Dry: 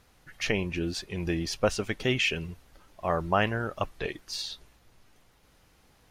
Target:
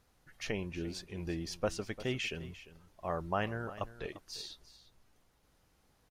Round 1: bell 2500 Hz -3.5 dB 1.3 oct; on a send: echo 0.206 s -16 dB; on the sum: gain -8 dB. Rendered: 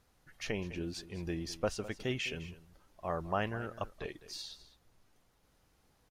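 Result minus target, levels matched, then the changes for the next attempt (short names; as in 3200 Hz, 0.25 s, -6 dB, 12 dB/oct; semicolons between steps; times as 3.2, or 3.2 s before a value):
echo 0.142 s early
change: echo 0.348 s -16 dB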